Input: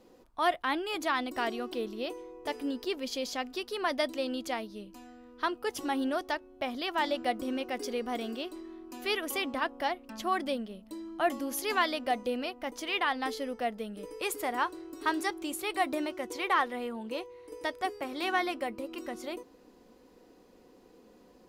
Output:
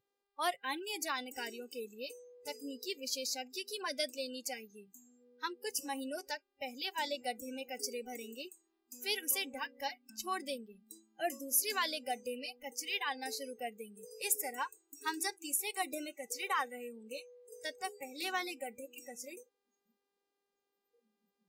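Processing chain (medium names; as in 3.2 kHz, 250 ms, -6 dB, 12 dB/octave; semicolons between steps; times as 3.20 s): tone controls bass -9 dB, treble +14 dB; mains buzz 400 Hz, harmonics 13, -54 dBFS -5 dB/octave; spectral noise reduction 27 dB; trim -7 dB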